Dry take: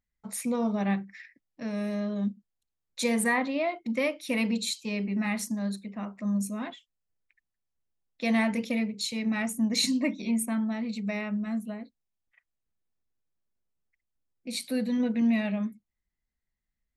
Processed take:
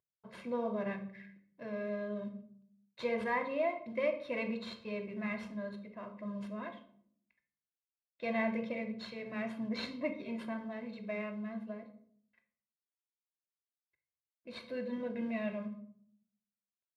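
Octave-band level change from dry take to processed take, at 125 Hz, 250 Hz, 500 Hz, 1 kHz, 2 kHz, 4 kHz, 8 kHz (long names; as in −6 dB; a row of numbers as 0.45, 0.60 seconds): can't be measured, −11.5 dB, −3.0 dB, −5.5 dB, −8.0 dB, −15.5 dB, below −30 dB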